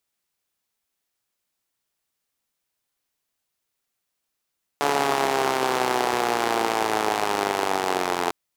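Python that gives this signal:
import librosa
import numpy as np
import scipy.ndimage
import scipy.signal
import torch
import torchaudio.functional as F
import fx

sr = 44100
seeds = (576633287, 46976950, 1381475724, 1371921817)

y = fx.engine_four_rev(sr, seeds[0], length_s=3.5, rpm=4300, resonances_hz=(420.0, 750.0), end_rpm=2600)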